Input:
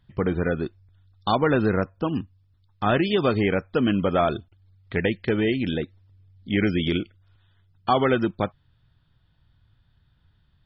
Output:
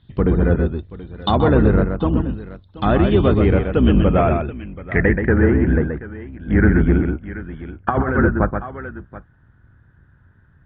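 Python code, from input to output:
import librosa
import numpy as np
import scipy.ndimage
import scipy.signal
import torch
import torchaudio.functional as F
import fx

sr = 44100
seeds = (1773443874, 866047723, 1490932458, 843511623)

p1 = fx.octave_divider(x, sr, octaves=2, level_db=1.0)
p2 = 10.0 ** (-23.5 / 20.0) * np.tanh(p1 / 10.0 ** (-23.5 / 20.0))
p3 = p1 + F.gain(torch.from_numpy(p2), -3.0).numpy()
p4 = scipy.signal.sosfilt(scipy.signal.butter(2, 54.0, 'highpass', fs=sr, output='sos'), p3)
p5 = p4 + fx.echo_multitap(p4, sr, ms=(128, 730), db=(-6.0, -18.0), dry=0)
p6 = fx.over_compress(p5, sr, threshold_db=-19.0, ratio=-0.5, at=(7.01, 8.22), fade=0.02)
p7 = fx.low_shelf(p6, sr, hz=410.0, db=4.5)
p8 = fx.env_lowpass_down(p7, sr, base_hz=1700.0, full_db=-15.0)
p9 = fx.high_shelf(p8, sr, hz=3100.0, db=-9.0)
y = fx.filter_sweep_lowpass(p9, sr, from_hz=3800.0, to_hz=1600.0, start_s=3.46, end_s=5.45, q=5.0)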